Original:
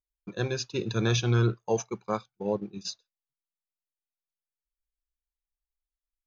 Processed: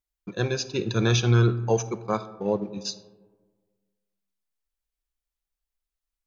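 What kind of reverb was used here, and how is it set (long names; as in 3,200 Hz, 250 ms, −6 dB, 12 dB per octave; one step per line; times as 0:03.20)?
comb and all-pass reverb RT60 1.5 s, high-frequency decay 0.35×, pre-delay 5 ms, DRR 14 dB
level +3.5 dB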